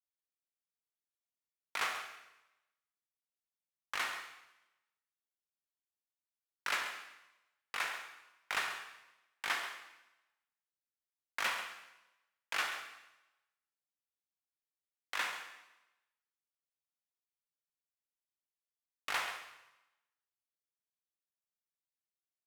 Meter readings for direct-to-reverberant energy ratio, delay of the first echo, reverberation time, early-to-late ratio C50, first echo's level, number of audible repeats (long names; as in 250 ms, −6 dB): 4.5 dB, 135 ms, 0.95 s, 5.5 dB, −11.0 dB, 1